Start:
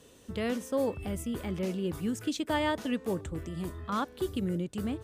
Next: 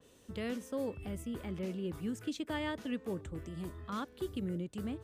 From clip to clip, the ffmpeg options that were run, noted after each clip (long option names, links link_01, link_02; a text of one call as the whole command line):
ffmpeg -i in.wav -filter_complex "[0:a]acrossover=split=600|1100[link_01][link_02][link_03];[link_02]acompressor=threshold=-49dB:ratio=6[link_04];[link_01][link_04][link_03]amix=inputs=3:normalize=0,adynamicequalizer=threshold=0.00224:dfrequency=3600:dqfactor=0.7:tfrequency=3600:tqfactor=0.7:attack=5:release=100:ratio=0.375:range=2.5:mode=cutabove:tftype=highshelf,volume=-5.5dB" out.wav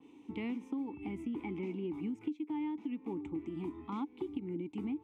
ffmpeg -i in.wav -filter_complex "[0:a]asplit=3[link_01][link_02][link_03];[link_01]bandpass=frequency=300:width_type=q:width=8,volume=0dB[link_04];[link_02]bandpass=frequency=870:width_type=q:width=8,volume=-6dB[link_05];[link_03]bandpass=frequency=2240:width_type=q:width=8,volume=-9dB[link_06];[link_04][link_05][link_06]amix=inputs=3:normalize=0,equalizer=frequency=4500:width_type=o:width=0.28:gain=-7,acompressor=threshold=-51dB:ratio=16,volume=17dB" out.wav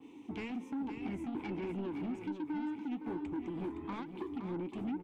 ffmpeg -i in.wav -af "asoftclip=type=tanh:threshold=-39.5dB,flanger=delay=2.2:depth=9.9:regen=-57:speed=1.2:shape=triangular,aecho=1:1:515:0.376,volume=8.5dB" out.wav